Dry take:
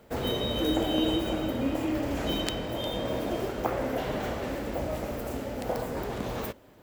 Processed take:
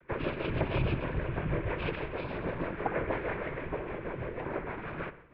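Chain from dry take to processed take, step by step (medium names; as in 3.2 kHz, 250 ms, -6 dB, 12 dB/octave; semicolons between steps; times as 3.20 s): tilt EQ +3 dB/octave; comb of notches 420 Hz; tape speed +28%; noise-vocoded speech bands 12; rotary cabinet horn 6.3 Hz; on a send at -13.5 dB: reverberation, pre-delay 57 ms; on the sum: mistuned SSB -280 Hz 270–2600 Hz; trim +5 dB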